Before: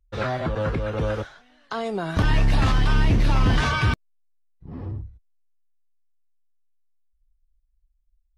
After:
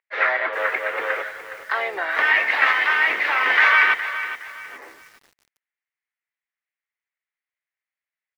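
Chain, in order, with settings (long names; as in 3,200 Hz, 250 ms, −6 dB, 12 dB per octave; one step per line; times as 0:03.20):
high-pass filter 430 Hz 24 dB per octave
spectral tilt +3 dB per octave
pitch-shifted copies added −3 semitones −12 dB, +3 semitones −9 dB
low-pass with resonance 2,000 Hz, resonance Q 4.9
feedback echo at a low word length 415 ms, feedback 35%, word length 7 bits, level −11.5 dB
level +1.5 dB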